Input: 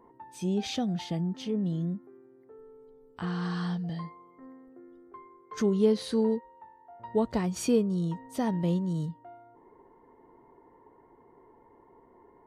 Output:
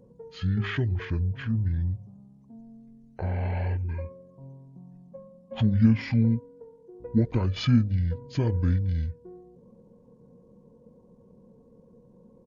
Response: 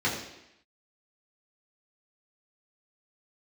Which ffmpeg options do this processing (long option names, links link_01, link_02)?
-af "bandreject=frequency=99.06:width_type=h:width=4,bandreject=frequency=198.12:width_type=h:width=4,bandreject=frequency=297.18:width_type=h:width=4,bandreject=frequency=396.24:width_type=h:width=4,bandreject=frequency=495.3:width_type=h:width=4,bandreject=frequency=594.36:width_type=h:width=4,bandreject=frequency=693.42:width_type=h:width=4,bandreject=frequency=792.48:width_type=h:width=4,bandreject=frequency=891.54:width_type=h:width=4,bandreject=frequency=990.6:width_type=h:width=4,bandreject=frequency=1089.66:width_type=h:width=4,asetrate=22696,aresample=44100,atempo=1.94306,volume=4dB"